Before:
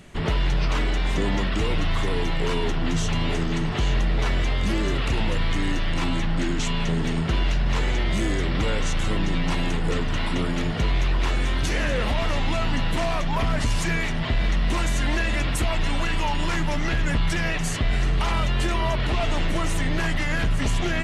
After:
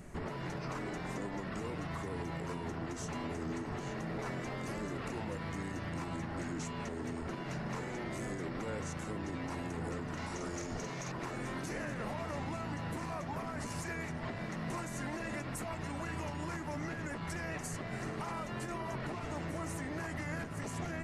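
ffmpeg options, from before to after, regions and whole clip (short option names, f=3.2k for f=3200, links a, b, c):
-filter_complex "[0:a]asettb=1/sr,asplit=3[a][b][c];[a]atrim=end=10.174[d];[b]atrim=start=10.17:end=11.12,asetpts=PTS-STARTPTS,afade=t=in:d=0.004:c=qsin,afade=t=out:st=0.946:d=0.004:c=qsin,equalizer=f=6.2k:t=o:w=0.66:g=13.5,asplit=2[e][f];[f]adelay=47,volume=-5dB[g];[e][g]amix=inputs=2:normalize=0,atrim=end_sample=41895[h];[c]atrim=start=11.116[i];[d][h]acrossfade=d=0.004:c1=hsin:c2=qsin[j];[j][i]acrossfade=d=0.004:c1=qsin:c2=hsin,afftfilt=real='re*lt(hypot(re,im),0.398)':imag='im*lt(hypot(re,im),0.398)':win_size=1024:overlap=0.75,equalizer=f=3.3k:t=o:w=0.98:g=-14.5,alimiter=level_in=4dB:limit=-24dB:level=0:latency=1:release=308,volume=-4dB,volume=-2.5dB"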